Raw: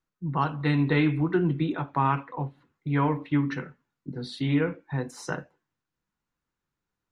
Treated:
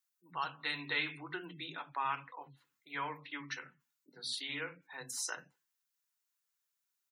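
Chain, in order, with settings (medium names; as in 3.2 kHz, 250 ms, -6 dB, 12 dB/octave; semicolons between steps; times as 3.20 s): differentiator; bands offset in time highs, lows 80 ms, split 250 Hz; spectral gate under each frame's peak -30 dB strong; trim +6.5 dB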